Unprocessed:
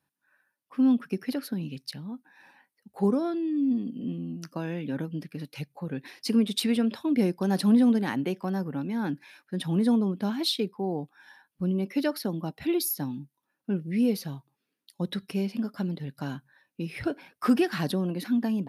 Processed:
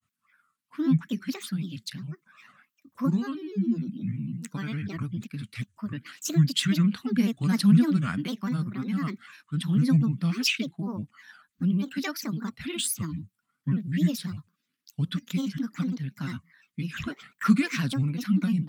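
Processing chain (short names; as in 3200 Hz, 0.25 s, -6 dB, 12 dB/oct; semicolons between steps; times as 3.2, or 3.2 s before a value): grains, spray 13 ms, pitch spread up and down by 7 st; band shelf 540 Hz -15 dB; gain +4 dB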